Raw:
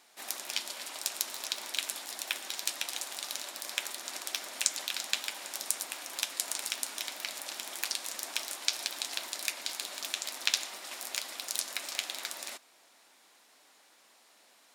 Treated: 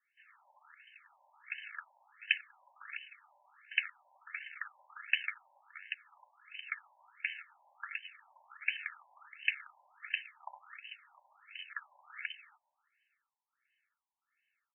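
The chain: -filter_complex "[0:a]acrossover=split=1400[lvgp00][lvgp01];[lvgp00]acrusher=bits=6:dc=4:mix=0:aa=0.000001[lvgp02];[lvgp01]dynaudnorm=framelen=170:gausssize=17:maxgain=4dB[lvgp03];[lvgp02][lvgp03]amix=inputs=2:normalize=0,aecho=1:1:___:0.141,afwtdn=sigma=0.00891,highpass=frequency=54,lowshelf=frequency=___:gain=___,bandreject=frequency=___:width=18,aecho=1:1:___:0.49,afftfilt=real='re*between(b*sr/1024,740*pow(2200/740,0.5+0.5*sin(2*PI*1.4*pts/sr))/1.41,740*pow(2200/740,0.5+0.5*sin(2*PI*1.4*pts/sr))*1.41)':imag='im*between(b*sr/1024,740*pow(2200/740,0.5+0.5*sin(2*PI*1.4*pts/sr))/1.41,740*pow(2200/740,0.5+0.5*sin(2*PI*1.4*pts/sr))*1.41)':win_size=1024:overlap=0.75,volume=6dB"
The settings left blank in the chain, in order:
313, 450, -7, 2.4k, 2.3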